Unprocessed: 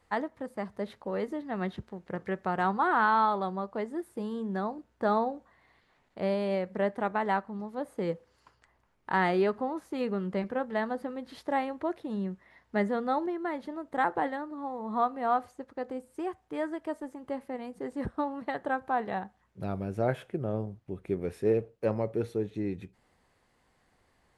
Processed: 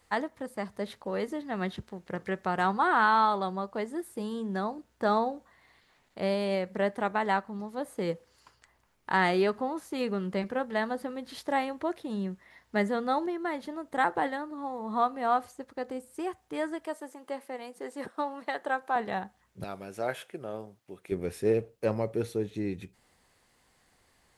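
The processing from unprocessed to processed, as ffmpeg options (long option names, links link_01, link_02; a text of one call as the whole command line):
ffmpeg -i in.wav -filter_complex "[0:a]asettb=1/sr,asplit=3[link_01][link_02][link_03];[link_01]atrim=end=16.854[link_04];[link_02]atrim=start=16.85:end=18.96,asetpts=PTS-STARTPTS,afade=type=in:duration=0.004:curve=qsin,afade=type=out:start_time=2.106:duration=0.004:curve=qsin,highpass=360[link_05];[link_03]atrim=start=18.956[link_06];[link_04][link_05]acrossfade=duration=0.004:curve1=hsin:curve2=qsin[link_07];[link_07][link_06]acrossfade=duration=0.004:curve1=qsin:curve2=hsin,asettb=1/sr,asplit=3[link_08][link_09][link_10];[link_08]atrim=end=19.644[link_11];[link_09]atrim=start=19.64:end=21.12,asetpts=PTS-STARTPTS,afade=type=in:duration=0.004:curve=qsin,afade=type=out:start_time=1.476:duration=0.004:curve=qsin,highpass=frequency=660:poles=1[link_12];[link_10]atrim=start=21.116[link_13];[link_11][link_12]acrossfade=duration=0.004:curve1=hsin:curve2=qsin[link_14];[link_14][link_13]acrossfade=duration=0.004:curve1=qsin:curve2=hsin,highshelf=frequency=3000:gain=10.5" out.wav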